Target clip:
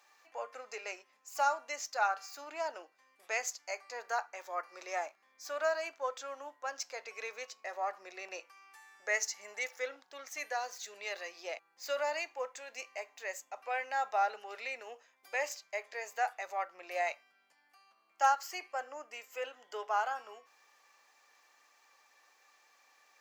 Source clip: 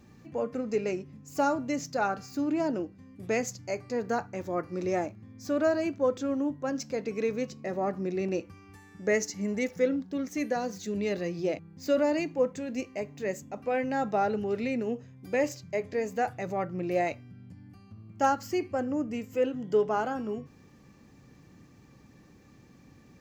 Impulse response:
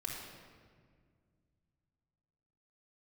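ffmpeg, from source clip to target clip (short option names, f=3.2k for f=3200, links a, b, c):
-af "highpass=f=740:w=0.5412,highpass=f=740:w=1.3066"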